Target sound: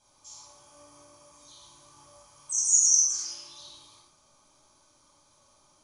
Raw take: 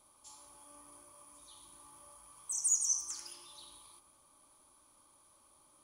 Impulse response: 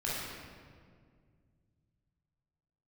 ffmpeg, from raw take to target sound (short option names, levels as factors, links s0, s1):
-filter_complex "[0:a]lowpass=f=6200:t=q:w=4.2[s0];[1:a]atrim=start_sample=2205,afade=t=out:st=0.19:d=0.01,atrim=end_sample=8820[s1];[s0][s1]afir=irnorm=-1:irlink=0"